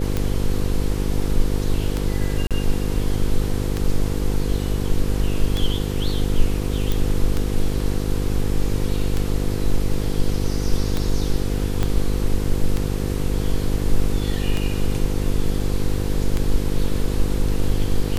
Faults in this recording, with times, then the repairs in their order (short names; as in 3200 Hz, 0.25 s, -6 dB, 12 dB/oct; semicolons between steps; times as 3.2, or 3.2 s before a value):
buzz 50 Hz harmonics 10 -24 dBFS
tick 33 1/3 rpm -9 dBFS
2.47–2.51 gap 37 ms
6.92 pop
11.83 pop -9 dBFS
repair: de-click; de-hum 50 Hz, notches 10; interpolate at 2.47, 37 ms